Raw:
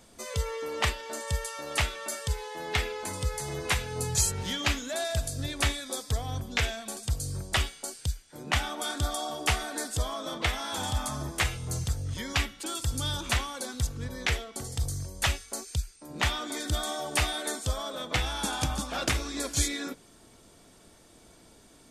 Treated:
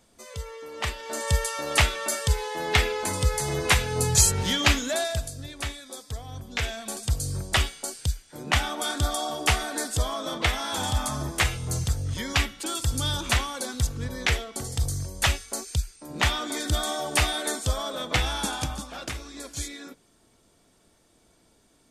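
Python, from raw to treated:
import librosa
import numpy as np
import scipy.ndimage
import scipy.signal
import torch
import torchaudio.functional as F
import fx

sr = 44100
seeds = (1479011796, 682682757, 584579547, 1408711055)

y = fx.gain(x, sr, db=fx.line((0.72, -5.5), (1.25, 7.0), (4.9, 7.0), (5.43, -5.5), (6.31, -5.5), (6.92, 4.0), (18.34, 4.0), (19.03, -6.5)))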